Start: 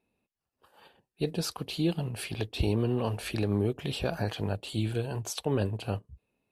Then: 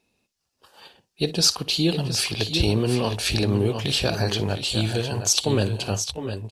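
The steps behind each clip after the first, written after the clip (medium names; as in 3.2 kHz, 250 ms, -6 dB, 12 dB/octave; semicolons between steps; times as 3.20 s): peaking EQ 5.5 kHz +13.5 dB 1.5 oct; on a send: multi-tap echo 57/696/714 ms -17/-15/-9 dB; on the sum: trim +5.5 dB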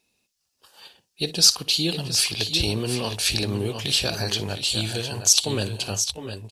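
treble shelf 2.5 kHz +10.5 dB; trim -5 dB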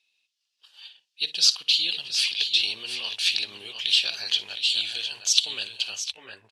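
band-pass sweep 3.2 kHz -> 1.5 kHz, 5.93–6.47 s; trim +5 dB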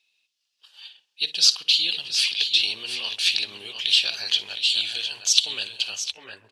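tape echo 134 ms, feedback 68%, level -18 dB, low-pass 1 kHz; trim +2 dB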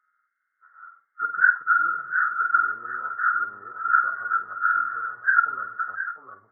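knee-point frequency compression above 1 kHz 4:1; flutter echo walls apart 8.7 m, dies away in 0.26 s; trim -5.5 dB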